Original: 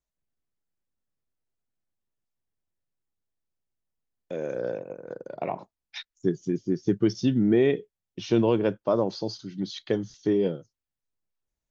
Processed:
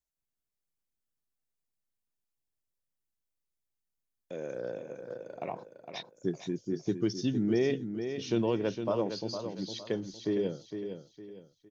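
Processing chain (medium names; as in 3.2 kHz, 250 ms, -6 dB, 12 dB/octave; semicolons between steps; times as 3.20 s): treble shelf 4.7 kHz +8.5 dB; feedback delay 459 ms, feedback 34%, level -8 dB; trim -7 dB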